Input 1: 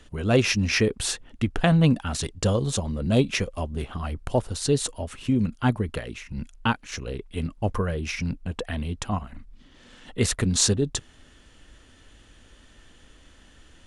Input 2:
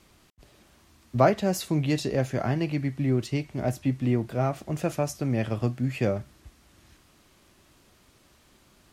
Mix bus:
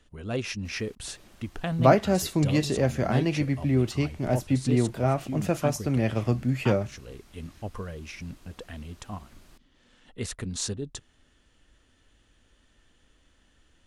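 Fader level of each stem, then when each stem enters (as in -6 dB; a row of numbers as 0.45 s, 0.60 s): -10.5 dB, +1.5 dB; 0.00 s, 0.65 s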